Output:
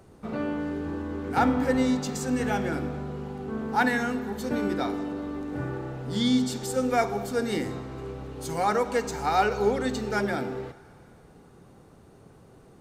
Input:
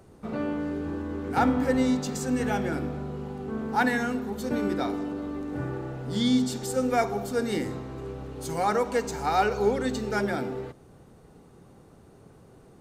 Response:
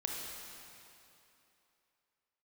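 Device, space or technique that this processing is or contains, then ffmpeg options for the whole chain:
filtered reverb send: -filter_complex "[0:a]asplit=2[a][b];[b]highpass=600,lowpass=7.1k[c];[1:a]atrim=start_sample=2205[d];[c][d]afir=irnorm=-1:irlink=0,volume=-16dB[e];[a][e]amix=inputs=2:normalize=0"

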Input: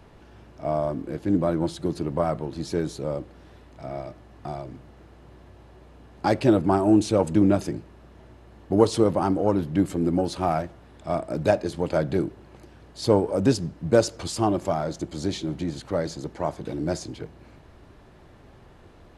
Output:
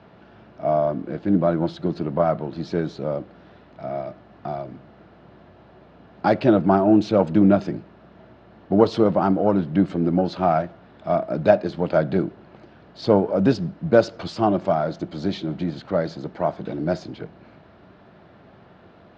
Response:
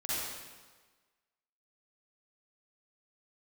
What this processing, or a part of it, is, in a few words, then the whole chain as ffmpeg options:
guitar cabinet: -af "highpass=110,equalizer=f=190:t=q:w=4:g=7,equalizer=f=660:t=q:w=4:g=6,equalizer=f=1.4k:t=q:w=4:g=5,lowpass=f=4.5k:w=0.5412,lowpass=f=4.5k:w=1.3066,volume=1dB"

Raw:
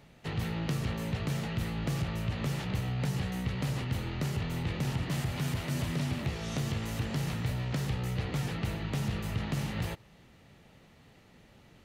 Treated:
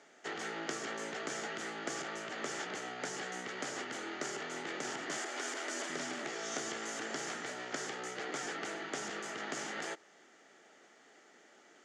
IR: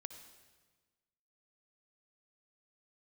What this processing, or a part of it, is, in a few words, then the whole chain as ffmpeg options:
phone speaker on a table: -filter_complex "[0:a]highpass=f=350:w=0.5412,highpass=f=350:w=1.3066,equalizer=f=520:t=q:w=4:g=-7,equalizer=f=990:t=q:w=4:g=-8,equalizer=f=1.5k:t=q:w=4:g=4,equalizer=f=2.6k:t=q:w=4:g=-9,equalizer=f=4k:t=q:w=4:g=-9,equalizer=f=6.9k:t=q:w=4:g=7,lowpass=f=7.6k:w=0.5412,lowpass=f=7.6k:w=1.3066,asettb=1/sr,asplit=3[a][b][c];[a]atrim=end=5.174[d];[b]atrim=start=5.17:end=5.9,asetpts=PTS-STARTPTS,afade=t=in:d=0.004:c=qsin,afade=t=out:st=0.726:d=0.004:c=qsin,highpass=f=260:w=0.5412,highpass=f=260:w=1.3066[e];[c]atrim=start=5.896[f];[d][e]acrossfade=d=0.004:c1=hsin:c2=qsin[g];[g][f]acrossfade=d=0.004:c1=qsin:c2=hsin,volume=3.5dB"

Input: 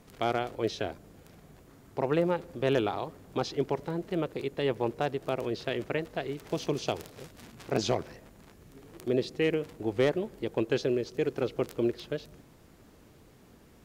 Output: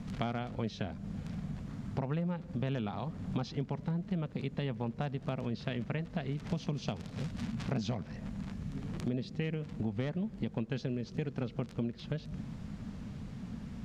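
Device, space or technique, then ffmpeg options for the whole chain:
jukebox: -af "lowpass=5.9k,lowshelf=f=270:t=q:w=3:g=8,acompressor=threshold=-38dB:ratio=6,volume=5.5dB"

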